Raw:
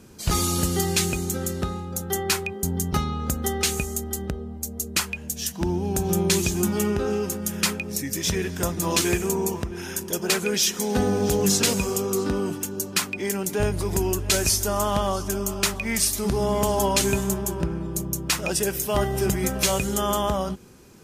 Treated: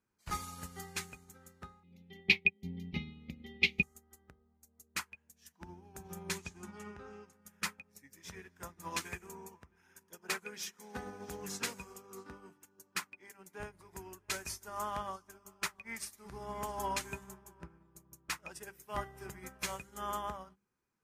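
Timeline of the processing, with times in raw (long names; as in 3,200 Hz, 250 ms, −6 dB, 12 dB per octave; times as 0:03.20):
0:01.83–0:03.83: drawn EQ curve 110 Hz 0 dB, 190 Hz +10 dB, 590 Hz −5 dB, 1,500 Hz −27 dB, 2,200 Hz +11 dB, 3,700 Hz +7 dB, 5,500 Hz −8 dB, 8,200 Hz −29 dB, 12,000 Hz −19 dB
0:06.38–0:07.33: low-pass filter 7,700 Hz
whole clip: flat-topped bell 1,400 Hz +8.5 dB; mains-hum notches 50/100/150/200/250/300/350/400 Hz; expander for the loud parts 2.5 to 1, over −31 dBFS; level −8.5 dB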